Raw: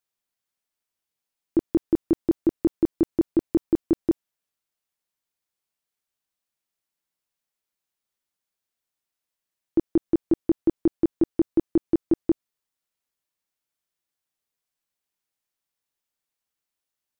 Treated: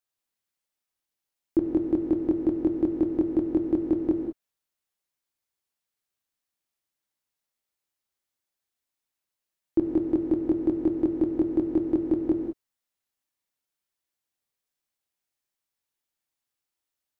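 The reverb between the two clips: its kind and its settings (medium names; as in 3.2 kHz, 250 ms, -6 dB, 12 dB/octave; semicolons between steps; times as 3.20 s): gated-style reverb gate 220 ms flat, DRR 2 dB; trim -3 dB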